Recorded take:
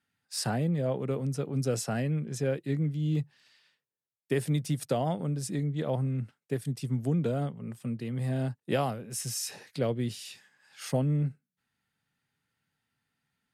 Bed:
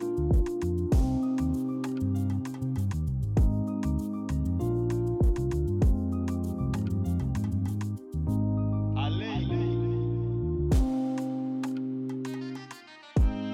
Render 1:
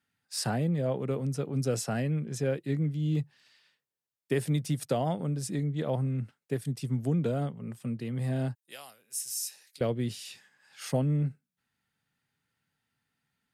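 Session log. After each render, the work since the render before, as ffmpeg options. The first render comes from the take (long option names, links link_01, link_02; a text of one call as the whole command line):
ffmpeg -i in.wav -filter_complex "[0:a]asettb=1/sr,asplit=3[link_01][link_02][link_03];[link_01]atrim=end=8.554[link_04];[link_02]atrim=start=8.55:end=9.81,asetpts=PTS-STARTPTS,afade=type=in:duration=0.004:curve=qsin,afade=type=out:start_time=1.256:duration=0.004:curve=qsin,aderivative[link_05];[link_03]atrim=start=9.806[link_06];[link_04][link_05]acrossfade=duration=0.004:curve1=hsin:curve2=qsin[link_07];[link_07][link_06]acrossfade=duration=0.004:curve1=qsin:curve2=hsin" out.wav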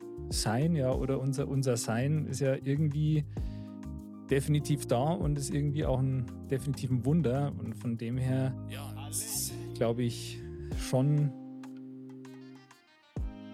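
ffmpeg -i in.wav -i bed.wav -filter_complex "[1:a]volume=-13dB[link_01];[0:a][link_01]amix=inputs=2:normalize=0" out.wav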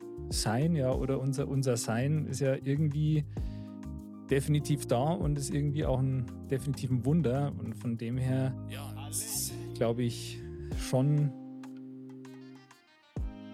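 ffmpeg -i in.wav -af anull out.wav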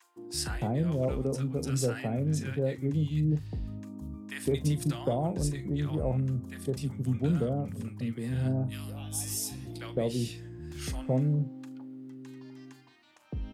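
ffmpeg -i in.wav -filter_complex "[0:a]asplit=2[link_01][link_02];[link_02]adelay=39,volume=-14dB[link_03];[link_01][link_03]amix=inputs=2:normalize=0,acrossover=split=1000[link_04][link_05];[link_04]adelay=160[link_06];[link_06][link_05]amix=inputs=2:normalize=0" out.wav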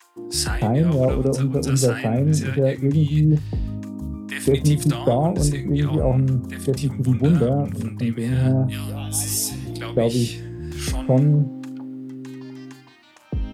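ffmpeg -i in.wav -af "volume=10.5dB" out.wav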